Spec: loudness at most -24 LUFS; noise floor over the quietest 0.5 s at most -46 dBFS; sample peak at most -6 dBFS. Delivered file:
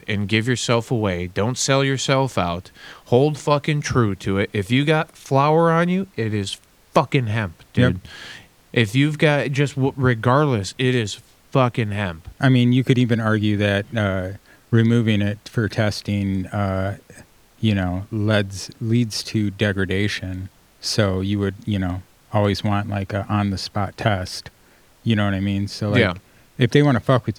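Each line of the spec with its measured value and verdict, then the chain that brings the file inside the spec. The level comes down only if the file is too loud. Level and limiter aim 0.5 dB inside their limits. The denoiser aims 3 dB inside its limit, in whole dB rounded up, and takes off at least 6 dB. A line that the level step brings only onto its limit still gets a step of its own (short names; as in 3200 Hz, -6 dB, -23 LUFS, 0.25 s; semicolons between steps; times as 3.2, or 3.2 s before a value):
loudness -20.5 LUFS: fail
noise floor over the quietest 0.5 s -53 dBFS: OK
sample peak -2.0 dBFS: fail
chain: gain -4 dB; limiter -6.5 dBFS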